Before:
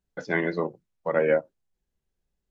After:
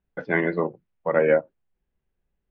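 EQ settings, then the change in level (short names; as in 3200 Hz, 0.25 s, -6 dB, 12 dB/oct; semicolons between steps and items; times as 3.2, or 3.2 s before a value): LPF 2900 Hz 24 dB/oct; +3.0 dB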